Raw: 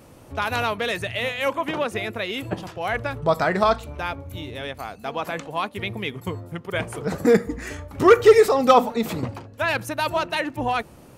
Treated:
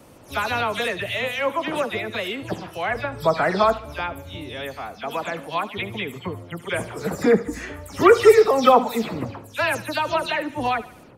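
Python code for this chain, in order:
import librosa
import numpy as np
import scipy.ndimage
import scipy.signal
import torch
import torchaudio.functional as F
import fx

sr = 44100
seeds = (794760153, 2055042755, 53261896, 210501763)

y = fx.spec_delay(x, sr, highs='early', ms=137)
y = fx.low_shelf(y, sr, hz=130.0, db=-5.5)
y = fx.echo_thinned(y, sr, ms=74, feedback_pct=51, hz=420.0, wet_db=-16.5)
y = F.gain(torch.from_numpy(y), 1.0).numpy()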